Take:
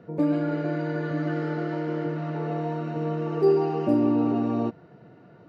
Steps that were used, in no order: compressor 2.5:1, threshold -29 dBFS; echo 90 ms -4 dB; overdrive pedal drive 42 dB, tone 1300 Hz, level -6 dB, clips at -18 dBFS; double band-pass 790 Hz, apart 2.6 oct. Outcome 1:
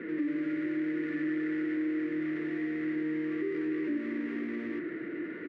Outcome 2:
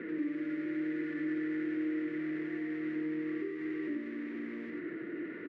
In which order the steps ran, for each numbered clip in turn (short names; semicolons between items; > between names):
echo > overdrive pedal > double band-pass > compressor; overdrive pedal > echo > compressor > double band-pass